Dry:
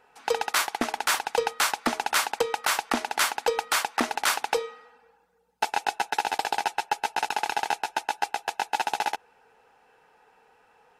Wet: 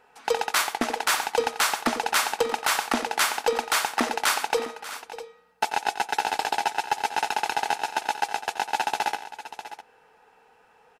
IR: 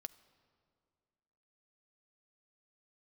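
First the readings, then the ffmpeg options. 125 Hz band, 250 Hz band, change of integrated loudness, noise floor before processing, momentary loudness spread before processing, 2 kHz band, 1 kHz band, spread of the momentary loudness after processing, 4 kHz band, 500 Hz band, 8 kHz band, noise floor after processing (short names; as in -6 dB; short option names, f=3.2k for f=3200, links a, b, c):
n/a, +2.0 dB, +1.5 dB, -62 dBFS, 5 LU, +1.5 dB, +1.5 dB, 14 LU, +1.5 dB, +1.5 dB, +1.5 dB, -59 dBFS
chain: -filter_complex "[0:a]aecho=1:1:89|589|655:0.224|0.15|0.168,asplit=2[a][b];[1:a]atrim=start_sample=2205[c];[b][c]afir=irnorm=-1:irlink=0,volume=-2dB[d];[a][d]amix=inputs=2:normalize=0,acontrast=30,volume=-7dB"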